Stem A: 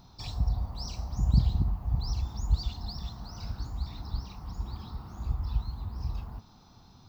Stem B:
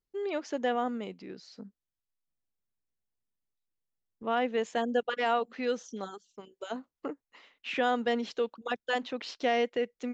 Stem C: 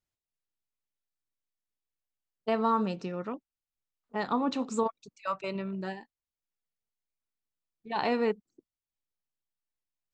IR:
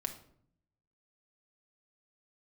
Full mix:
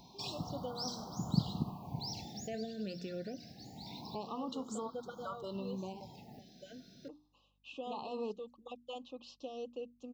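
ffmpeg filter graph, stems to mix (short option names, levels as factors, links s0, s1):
-filter_complex "[0:a]highpass=f=160:w=0.5412,highpass=f=160:w=1.3066,volume=1.12,asplit=2[s0][s1];[s1]volume=0.112[s2];[1:a]bandreject=f=50:t=h:w=6,bandreject=f=100:t=h:w=6,bandreject=f=150:t=h:w=6,aecho=1:1:3.7:0.61,aeval=exprs='val(0)+0.000794*(sin(2*PI*50*n/s)+sin(2*PI*2*50*n/s)/2+sin(2*PI*3*50*n/s)/3+sin(2*PI*4*50*n/s)/4+sin(2*PI*5*50*n/s)/5)':c=same,volume=0.188[s3];[2:a]agate=range=0.0224:threshold=0.00501:ratio=3:detection=peak,alimiter=limit=0.0794:level=0:latency=1:release=62,aeval=exprs='val(0)+0.000794*(sin(2*PI*60*n/s)+sin(2*PI*2*60*n/s)/2+sin(2*PI*3*60*n/s)/3+sin(2*PI*4*60*n/s)/4+sin(2*PI*5*60*n/s)/5)':c=same,volume=0.75,asplit=2[s4][s5];[s5]apad=whole_len=312264[s6];[s0][s6]sidechaincompress=threshold=0.00631:ratio=4:attack=6.9:release=650[s7];[s3][s4]amix=inputs=2:normalize=0,bandreject=f=60:t=h:w=6,bandreject=f=120:t=h:w=6,bandreject=f=180:t=h:w=6,bandreject=f=240:t=h:w=6,bandreject=f=300:t=h:w=6,alimiter=level_in=2.37:limit=0.0631:level=0:latency=1:release=196,volume=0.422,volume=1[s8];[s2]aecho=0:1:101|202|303|404|505|606|707|808:1|0.53|0.281|0.149|0.0789|0.0418|0.0222|0.0117[s9];[s7][s8][s9]amix=inputs=3:normalize=0,afftfilt=real='re*(1-between(b*sr/1024,990*pow(2200/990,0.5+0.5*sin(2*PI*0.25*pts/sr))/1.41,990*pow(2200/990,0.5+0.5*sin(2*PI*0.25*pts/sr))*1.41))':imag='im*(1-between(b*sr/1024,990*pow(2200/990,0.5+0.5*sin(2*PI*0.25*pts/sr))/1.41,990*pow(2200/990,0.5+0.5*sin(2*PI*0.25*pts/sr))*1.41))':win_size=1024:overlap=0.75"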